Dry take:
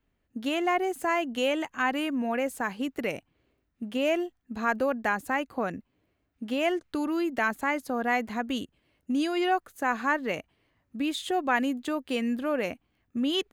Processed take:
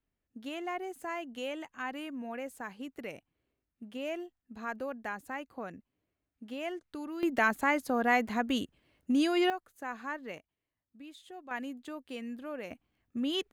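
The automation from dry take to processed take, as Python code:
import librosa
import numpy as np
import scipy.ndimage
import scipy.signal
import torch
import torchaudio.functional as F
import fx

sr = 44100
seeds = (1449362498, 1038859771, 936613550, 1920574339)

y = fx.gain(x, sr, db=fx.steps((0.0, -11.0), (7.23, 0.0), (9.5, -12.0), (10.38, -20.0), (11.51, -12.0), (12.71, -5.0)))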